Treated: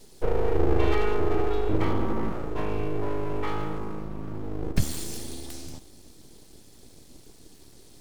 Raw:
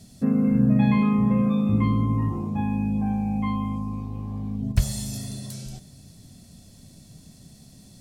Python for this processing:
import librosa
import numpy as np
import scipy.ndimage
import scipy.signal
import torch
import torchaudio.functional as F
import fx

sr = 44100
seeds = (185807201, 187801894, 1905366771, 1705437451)

y = fx.peak_eq(x, sr, hz=77.0, db=-12.0, octaves=0.21)
y = np.abs(y)